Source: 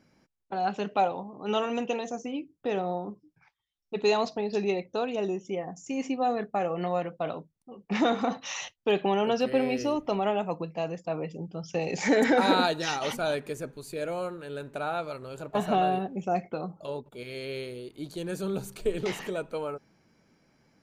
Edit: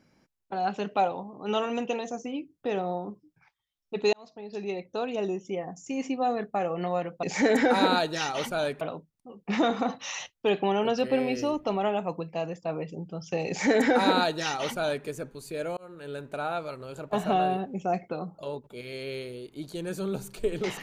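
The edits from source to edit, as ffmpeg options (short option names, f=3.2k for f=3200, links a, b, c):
-filter_complex "[0:a]asplit=5[a][b][c][d][e];[a]atrim=end=4.13,asetpts=PTS-STARTPTS,afade=t=out:st=4.126:d=0.004:c=hsin[f];[b]atrim=start=4.13:end=7.232,asetpts=PTS-STARTPTS,afade=t=in:d=1.02[g];[c]atrim=start=11.898:end=13.482[h];[d]atrim=start=7.228:end=14.19,asetpts=PTS-STARTPTS,afade=t=out:st=6.958:d=0.004:c=hsin[i];[e]atrim=start=14.19,asetpts=PTS-STARTPTS,afade=t=in:d=0.3[j];[f][g]concat=n=2:v=0:a=1[k];[k][h]acrossfade=d=0.004:c1=hsin:c2=hsin[l];[i][j]concat=n=2:v=0:a=1[m];[l][m]acrossfade=d=0.004:c1=hsin:c2=hsin"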